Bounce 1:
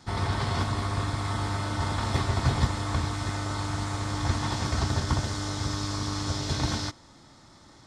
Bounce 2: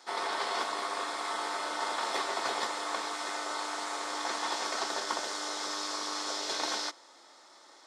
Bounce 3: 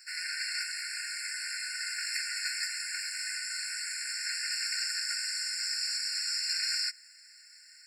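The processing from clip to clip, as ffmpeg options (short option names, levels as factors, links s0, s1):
-af "highpass=f=410:w=0.5412,highpass=f=410:w=1.3066"
-af "crystalizer=i=2.5:c=0,afftfilt=real='re*eq(mod(floor(b*sr/1024/1400),2),1)':imag='im*eq(mod(floor(b*sr/1024/1400),2),1)':win_size=1024:overlap=0.75"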